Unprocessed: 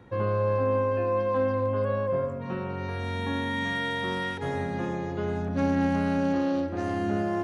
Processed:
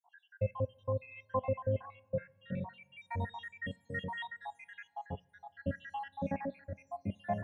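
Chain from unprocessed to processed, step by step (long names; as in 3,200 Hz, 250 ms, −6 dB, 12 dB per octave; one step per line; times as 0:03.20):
time-frequency cells dropped at random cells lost 80%
high-pass filter 120 Hz 6 dB per octave
bass and treble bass +7 dB, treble −5 dB
phaser with its sweep stopped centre 1,300 Hz, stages 6
coupled-rooms reverb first 0.2 s, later 2.3 s, from −21 dB, DRR 16 dB
auto-filter bell 0.57 Hz 380–4,200 Hz +7 dB
level −3 dB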